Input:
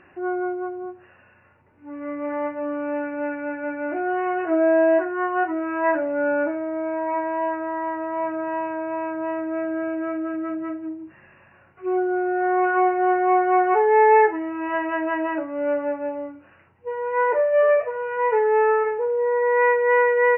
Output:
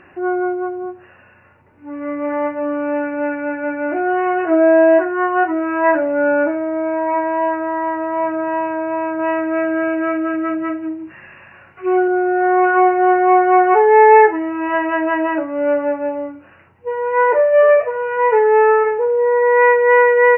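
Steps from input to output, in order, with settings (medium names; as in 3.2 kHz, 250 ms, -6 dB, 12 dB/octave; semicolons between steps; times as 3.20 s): 9.19–12.08 s: peaking EQ 2.7 kHz +7 dB 2.5 oct; trim +6.5 dB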